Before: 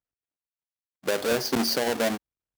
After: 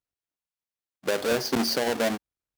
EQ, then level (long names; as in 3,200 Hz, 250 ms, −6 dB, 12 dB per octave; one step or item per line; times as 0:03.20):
high-shelf EQ 8,500 Hz −3.5 dB
0.0 dB